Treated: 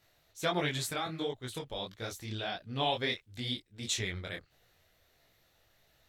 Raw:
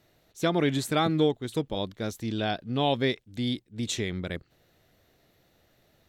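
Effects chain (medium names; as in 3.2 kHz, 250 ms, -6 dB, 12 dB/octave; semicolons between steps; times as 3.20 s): peaking EQ 240 Hz -11.5 dB 2.3 oct; 0.90–2.79 s: compression 2.5:1, threshold -33 dBFS, peak gain reduction 7 dB; detune thickener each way 52 cents; trim +3 dB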